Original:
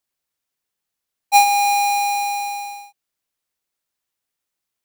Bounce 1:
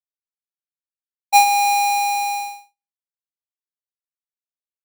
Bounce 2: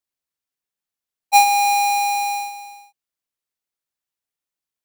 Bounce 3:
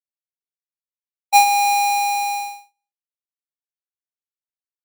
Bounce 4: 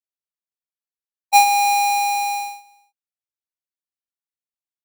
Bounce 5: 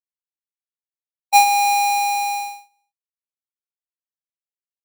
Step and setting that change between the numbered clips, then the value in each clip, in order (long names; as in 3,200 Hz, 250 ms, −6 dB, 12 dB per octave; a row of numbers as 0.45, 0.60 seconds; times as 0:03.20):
noise gate, range: −58, −7, −45, −20, −33 decibels